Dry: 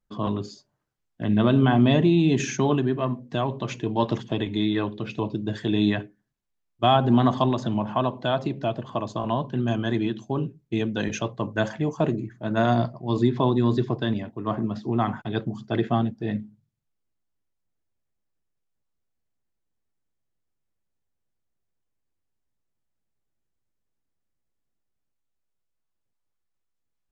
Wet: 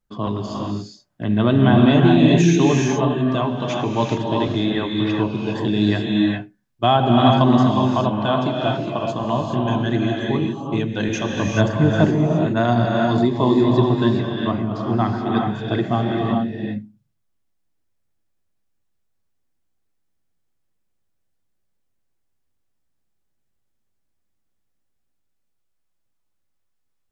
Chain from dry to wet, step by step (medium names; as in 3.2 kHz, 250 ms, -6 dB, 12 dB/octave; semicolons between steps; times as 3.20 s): 11.45–12.06 s: bass shelf 240 Hz +11 dB; gated-style reverb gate 440 ms rising, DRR -0.5 dB; trim +2.5 dB